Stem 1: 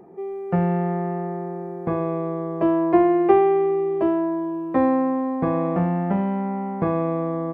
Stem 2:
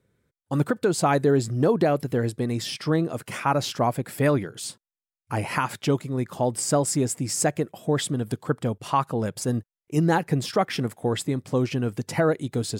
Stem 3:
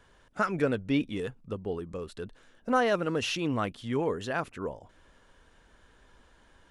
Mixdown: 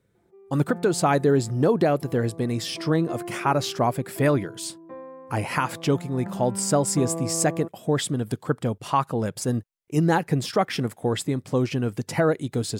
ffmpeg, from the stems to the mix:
ffmpeg -i stem1.wav -i stem2.wav -filter_complex "[0:a]aecho=1:1:5.8:0.64,adelay=150,volume=-11dB,afade=type=in:start_time=6.11:duration=0.45:silence=0.298538[link_01];[1:a]volume=0.5dB[link_02];[link_01][link_02]amix=inputs=2:normalize=0" out.wav

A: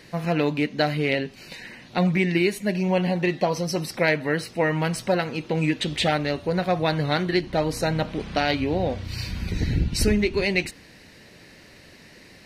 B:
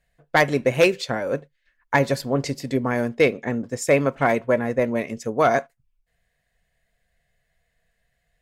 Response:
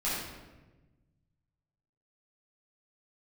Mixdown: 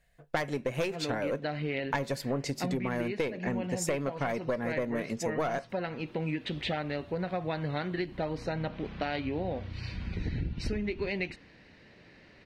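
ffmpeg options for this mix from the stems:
-filter_complex "[0:a]lowpass=3300,adelay=650,volume=-6.5dB[link_01];[1:a]aeval=exprs='(tanh(3.55*val(0)+0.3)-tanh(0.3))/3.55':channel_layout=same,volume=2dB[link_02];[link_01][link_02]amix=inputs=2:normalize=0,acompressor=threshold=-28dB:ratio=10"

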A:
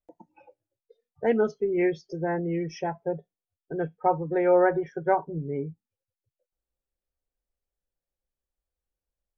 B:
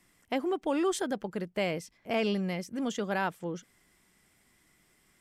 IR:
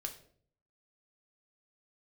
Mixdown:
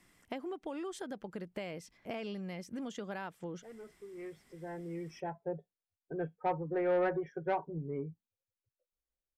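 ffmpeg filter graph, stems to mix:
-filter_complex "[0:a]asoftclip=type=tanh:threshold=-17dB,adelay=2400,volume=-7dB[link_01];[1:a]acompressor=threshold=-39dB:ratio=6,volume=0.5dB,asplit=2[link_02][link_03];[link_03]apad=whole_len=519247[link_04];[link_01][link_04]sidechaincompress=threshold=-59dB:ratio=8:attack=16:release=1360[link_05];[link_05][link_02]amix=inputs=2:normalize=0,highshelf=frequency=7200:gain=-5"

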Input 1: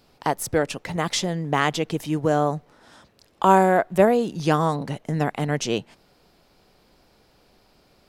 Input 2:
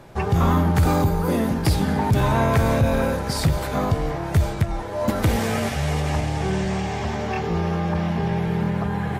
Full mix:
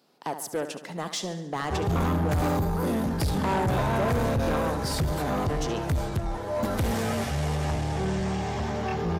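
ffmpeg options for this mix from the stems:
ffmpeg -i stem1.wav -i stem2.wav -filter_complex "[0:a]highpass=frequency=170:width=0.5412,highpass=frequency=170:width=1.3066,acontrast=73,volume=-12dB,asplit=2[link_01][link_02];[link_02]volume=-12dB[link_03];[1:a]adelay=1550,volume=-2dB[link_04];[link_03]aecho=0:1:71|142|213|284|355|426|497|568:1|0.54|0.292|0.157|0.085|0.0459|0.0248|0.0134[link_05];[link_01][link_04][link_05]amix=inputs=3:normalize=0,equalizer=frequency=2300:width_type=o:width=0.71:gain=-3.5,asoftclip=type=tanh:threshold=-21dB" out.wav

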